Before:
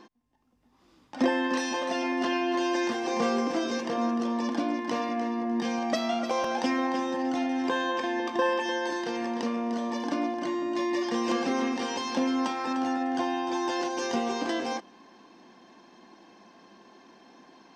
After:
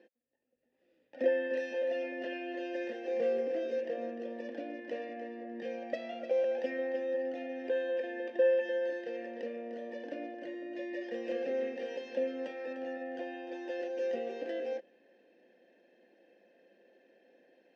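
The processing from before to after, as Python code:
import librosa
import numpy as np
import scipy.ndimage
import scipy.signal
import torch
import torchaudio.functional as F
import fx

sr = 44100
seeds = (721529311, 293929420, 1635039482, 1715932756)

y = fx.vowel_filter(x, sr, vowel='e')
y = fx.low_shelf(y, sr, hz=450.0, db=6.5)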